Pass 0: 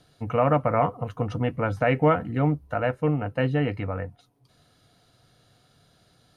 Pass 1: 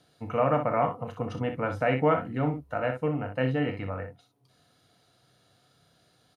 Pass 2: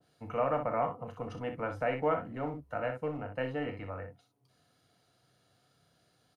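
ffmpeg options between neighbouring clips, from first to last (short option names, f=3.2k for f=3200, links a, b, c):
-filter_complex "[0:a]highpass=f=140:p=1,asplit=2[a][b];[b]aecho=0:1:31|61:0.355|0.376[c];[a][c]amix=inputs=2:normalize=0,volume=-3.5dB"
-filter_complex "[0:a]equalizer=f=3.7k:w=6.2:g=-4.5,acrossover=split=300[a][b];[a]asoftclip=type=hard:threshold=-37.5dB[c];[c][b]amix=inputs=2:normalize=0,adynamicequalizer=threshold=0.00891:dfrequency=1500:dqfactor=0.7:tfrequency=1500:tqfactor=0.7:attack=5:release=100:ratio=0.375:range=2:mode=cutabove:tftype=highshelf,volume=-5dB"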